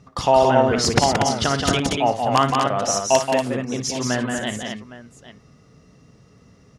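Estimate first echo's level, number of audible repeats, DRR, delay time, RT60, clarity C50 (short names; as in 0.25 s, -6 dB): -12.0 dB, 4, none, 56 ms, none, none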